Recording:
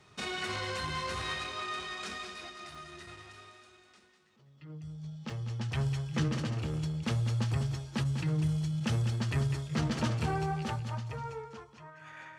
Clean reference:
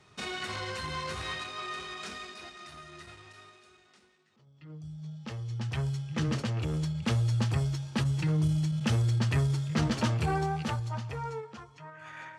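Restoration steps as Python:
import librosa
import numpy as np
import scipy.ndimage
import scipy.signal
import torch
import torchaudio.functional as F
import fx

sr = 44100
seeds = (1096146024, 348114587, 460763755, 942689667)

y = fx.fix_interpolate(x, sr, at_s=(2.75, 5.3), length_ms=2.8)
y = fx.fix_echo_inverse(y, sr, delay_ms=199, level_db=-8.5)
y = fx.gain(y, sr, db=fx.steps((0.0, 0.0), (6.28, 3.5)))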